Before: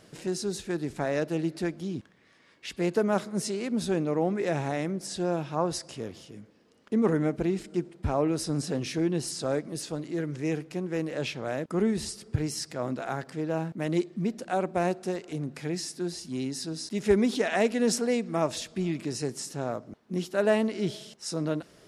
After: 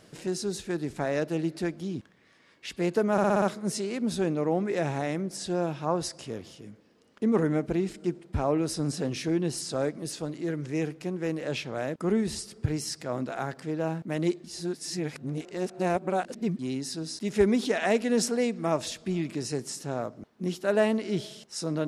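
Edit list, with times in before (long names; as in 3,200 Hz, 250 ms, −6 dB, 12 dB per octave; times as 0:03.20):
0:03.12: stutter 0.06 s, 6 plays
0:14.14–0:16.29: reverse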